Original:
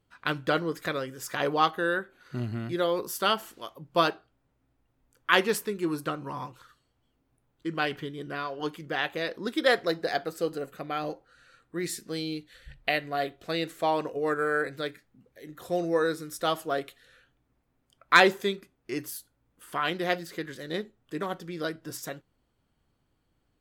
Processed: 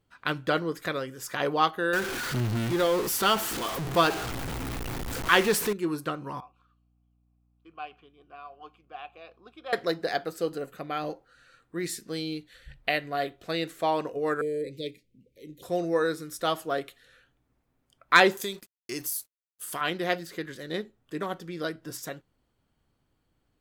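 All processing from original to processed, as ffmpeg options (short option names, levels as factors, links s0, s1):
-filter_complex "[0:a]asettb=1/sr,asplit=3[s0][s1][s2];[s0]atrim=end=1.934[s3];[s1]atrim=start=1.93:end=5.73,asetpts=PTS-STARTPTS,afade=t=in:d=0.004:c=qsin,afade=t=out:st=3.796:d=0.004:c=qsin,aeval=exprs='val(0)+0.5*0.0447*sgn(val(0))':c=same,bandreject=f=590:w=11[s4];[s2]atrim=start=5.726[s5];[s3][s4]acrossfade=d=0.004:c1=hsin:c2=qsin[s6];[s6][s5]acrossfade=d=0.004:c1=qsin:c2=hsin,asettb=1/sr,asplit=3[s7][s8][s9];[s7]atrim=end=6.404[s10];[s8]atrim=start=6.4:end=9.73,asetpts=PTS-STARTPTS,afade=t=in:d=0.004:c=qsin,afade=t=out:st=3.326:d=0.004:c=qsin,asplit=3[s11][s12][s13];[s11]bandpass=f=730:t=q:w=8,volume=1[s14];[s12]bandpass=f=1090:t=q:w=8,volume=0.501[s15];[s13]bandpass=f=2440:t=q:w=8,volume=0.355[s16];[s14][s15][s16]amix=inputs=3:normalize=0,equalizer=f=600:w=2.3:g=-8,aeval=exprs='val(0)+0.000447*(sin(2*PI*60*n/s)+sin(2*PI*2*60*n/s)/2+sin(2*PI*3*60*n/s)/3+sin(2*PI*4*60*n/s)/4+sin(2*PI*5*60*n/s)/5)':c=same[s17];[s9]atrim=start=9.726[s18];[s10][s17]acrossfade=d=0.004:c1=hsin:c2=qsin[s19];[s19][s18]acrossfade=d=0.004:c1=qsin:c2=hsin,asettb=1/sr,asplit=3[s20][s21][s22];[s20]atrim=end=14.414[s23];[s21]atrim=start=14.41:end=15.63,asetpts=PTS-STARTPTS,afade=t=in:d=0.004:c=qsin,afade=t=out:st=1.216:d=0.004:c=qsin,asuperstop=centerf=1100:order=12:qfactor=0.67,highshelf=f=7000:g=-5.5[s24];[s22]atrim=start=15.626[s25];[s23][s24]acrossfade=d=0.004:c1=hsin:c2=qsin[s26];[s26][s25]acrossfade=d=0.004:c1=qsin:c2=hsin,asettb=1/sr,asplit=3[s27][s28][s29];[s27]atrim=end=18.374[s30];[s28]atrim=start=18.37:end=19.81,asetpts=PTS-STARTPTS,afade=t=in:d=0.004:c=qsin,afade=t=out:st=1.436:d=0.004:c=qsin,bass=f=250:g=0,treble=f=4000:g=15,acompressor=threshold=0.0355:ratio=3:attack=3.2:release=140:knee=1:detection=peak,aeval=exprs='sgn(val(0))*max(abs(val(0))-0.00211,0)':c=same[s31];[s29]atrim=start=19.806[s32];[s30][s31]acrossfade=d=0.004:c1=hsin:c2=qsin[s33];[s33][s32]acrossfade=d=0.004:c1=qsin:c2=hsin"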